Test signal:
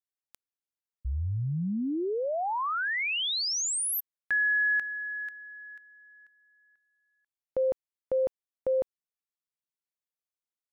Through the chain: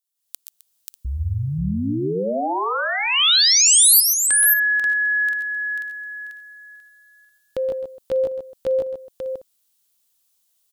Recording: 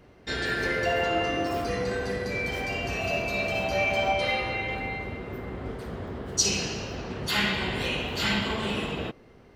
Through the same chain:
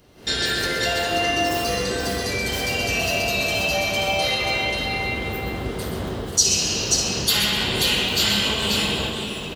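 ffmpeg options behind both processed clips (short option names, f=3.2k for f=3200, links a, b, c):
-af "acompressor=threshold=-41dB:ratio=2:attack=1.1:release=605:detection=peak,aexciter=amount=3.7:drive=3.8:freq=3k,aecho=1:1:122|135|261|535|594:0.316|0.355|0.126|0.531|0.119,dynaudnorm=f=150:g=3:m=14.5dB,volume=-2dB"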